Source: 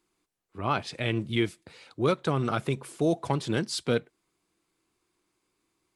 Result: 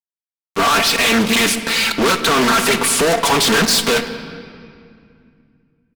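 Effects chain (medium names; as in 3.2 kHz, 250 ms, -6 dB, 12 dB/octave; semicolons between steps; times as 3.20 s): high-pass 430 Hz 12 dB/octave; expander -56 dBFS; peaking EQ 560 Hz -9.5 dB 1.6 oct; comb 4.4 ms, depth 80%; in parallel at -1 dB: compression, threshold -41 dBFS, peak gain reduction 15.5 dB; on the sum: fuzz box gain 50 dB, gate -52 dBFS; on a send at -8 dB: reverberation RT60 2.3 s, pre-delay 5 ms; on the sum: loudspeaker Doppler distortion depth 0.45 ms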